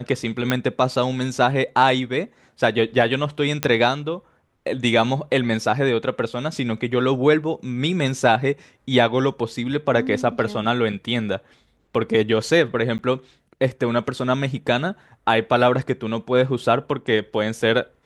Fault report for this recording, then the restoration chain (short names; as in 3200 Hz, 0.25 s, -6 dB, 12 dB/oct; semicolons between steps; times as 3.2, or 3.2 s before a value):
0.5 pop -6 dBFS
3.63 pop -4 dBFS
12.98–12.99 gap 9.8 ms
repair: de-click; interpolate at 12.98, 9.8 ms